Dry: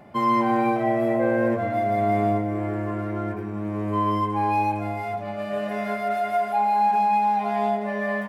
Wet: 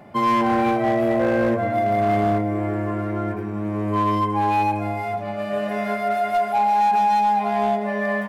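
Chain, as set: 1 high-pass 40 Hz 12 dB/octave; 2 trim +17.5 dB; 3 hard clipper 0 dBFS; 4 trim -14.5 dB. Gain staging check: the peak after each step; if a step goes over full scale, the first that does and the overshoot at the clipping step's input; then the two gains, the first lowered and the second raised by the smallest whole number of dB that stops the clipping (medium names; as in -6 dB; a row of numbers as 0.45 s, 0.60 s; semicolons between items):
-11.5 dBFS, +6.0 dBFS, 0.0 dBFS, -14.5 dBFS; step 2, 6.0 dB; step 2 +11.5 dB, step 4 -8.5 dB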